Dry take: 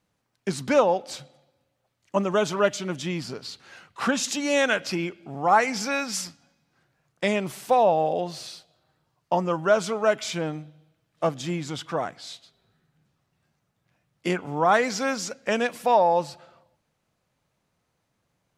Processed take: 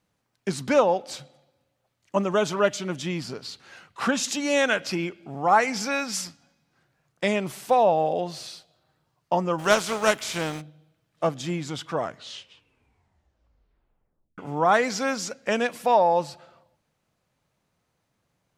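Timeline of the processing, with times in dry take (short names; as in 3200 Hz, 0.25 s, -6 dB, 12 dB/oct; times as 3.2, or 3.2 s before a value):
9.58–10.6 spectral contrast lowered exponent 0.6
11.9 tape stop 2.48 s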